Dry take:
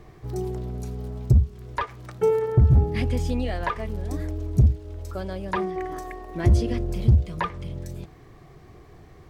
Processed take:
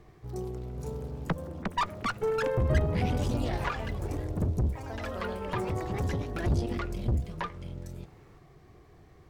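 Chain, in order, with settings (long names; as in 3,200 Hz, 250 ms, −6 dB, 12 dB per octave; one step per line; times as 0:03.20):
0:01.27–0:01.84: three sine waves on the formant tracks
tube saturation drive 20 dB, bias 0.65
delay with pitch and tempo change per echo 563 ms, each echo +3 semitones, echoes 3
level −3.5 dB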